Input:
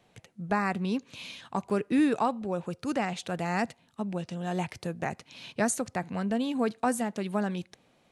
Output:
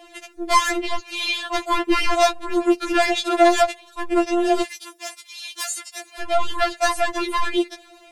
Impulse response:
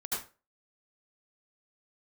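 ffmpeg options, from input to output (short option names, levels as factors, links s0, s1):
-filter_complex "[0:a]acrossover=split=4400[s0][s1];[s1]acompressor=threshold=0.00251:ratio=4:attack=1:release=60[s2];[s0][s2]amix=inputs=2:normalize=0,aeval=exprs='0.178*(cos(1*acos(clip(val(0)/0.178,-1,1)))-cos(1*PI/2))+0.0562*(cos(2*acos(clip(val(0)/0.178,-1,1)))-cos(2*PI/2))':c=same,asplit=2[s3][s4];[s4]aeval=exprs='0.282*sin(PI/2*7.08*val(0)/0.282)':c=same,volume=0.355[s5];[s3][s5]amix=inputs=2:normalize=0,asettb=1/sr,asplit=3[s6][s7][s8];[s6]atrim=end=4.624[s9];[s7]atrim=start=4.62:end=6.21,asetpts=PTS-STARTPTS,afade=t=in:d=0.004:c=qsin,afade=t=out:st=1.586:d=0.004:c=qsin,aderivative[s10];[s8]atrim=start=6.206[s11];[s9][s10]acrossfade=d=0.004:c1=hsin:c2=qsin[s12];[s12][s11]acrossfade=d=0.004:c1=qsin:c2=hsin,afftfilt=real='re*4*eq(mod(b,16),0)':imag='im*4*eq(mod(b,16),0)':win_size=2048:overlap=0.75,volume=2.24"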